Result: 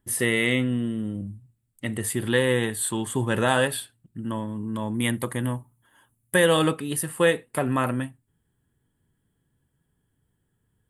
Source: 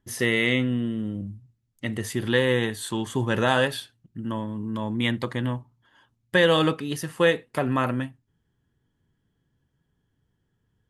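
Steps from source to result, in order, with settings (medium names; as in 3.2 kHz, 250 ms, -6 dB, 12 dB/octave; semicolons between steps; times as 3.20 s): resonant high shelf 7.2 kHz +6 dB, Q 3, from 4.94 s +13.5 dB, from 6.46 s +7 dB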